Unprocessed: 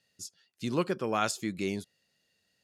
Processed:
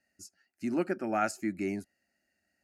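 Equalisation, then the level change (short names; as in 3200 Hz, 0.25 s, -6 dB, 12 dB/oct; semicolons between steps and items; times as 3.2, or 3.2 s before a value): high shelf 3600 Hz -8.5 dB; fixed phaser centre 700 Hz, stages 8; +3.0 dB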